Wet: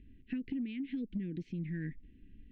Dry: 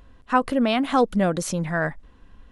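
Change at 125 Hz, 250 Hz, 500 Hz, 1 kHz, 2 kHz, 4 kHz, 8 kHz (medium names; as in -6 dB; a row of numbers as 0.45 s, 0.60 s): -11.5 dB, -13.0 dB, -28.0 dB, under -40 dB, -23.5 dB, -25.0 dB, under -40 dB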